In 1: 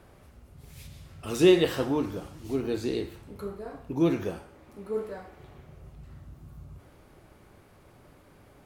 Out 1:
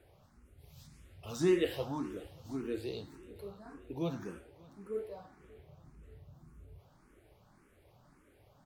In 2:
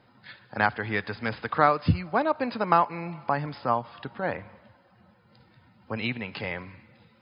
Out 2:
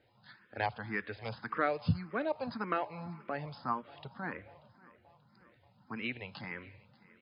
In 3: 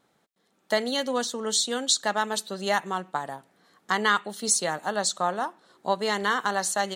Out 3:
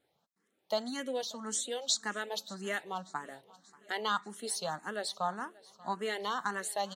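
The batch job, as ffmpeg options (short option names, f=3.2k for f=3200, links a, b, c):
-filter_complex "[0:a]aecho=1:1:585|1170|1755|2340:0.0708|0.0418|0.0246|0.0145,asplit=2[a][b];[b]afreqshift=1.8[c];[a][c]amix=inputs=2:normalize=1,volume=-6dB"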